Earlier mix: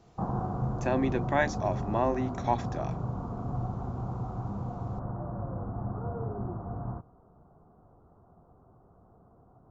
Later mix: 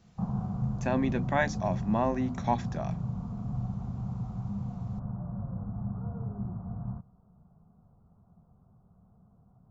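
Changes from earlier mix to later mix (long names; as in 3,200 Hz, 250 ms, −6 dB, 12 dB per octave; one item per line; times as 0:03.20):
background −9.0 dB
master: add low shelf with overshoot 250 Hz +7 dB, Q 3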